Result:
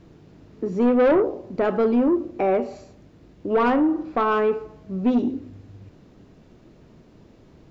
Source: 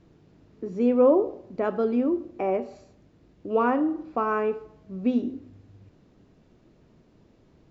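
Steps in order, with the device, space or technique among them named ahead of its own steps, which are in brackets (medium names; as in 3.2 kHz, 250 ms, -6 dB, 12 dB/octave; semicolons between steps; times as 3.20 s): saturation between pre-emphasis and de-emphasis (treble shelf 3.1 kHz +11 dB; saturation -21 dBFS, distortion -10 dB; treble shelf 3.1 kHz -11 dB); trim +7.5 dB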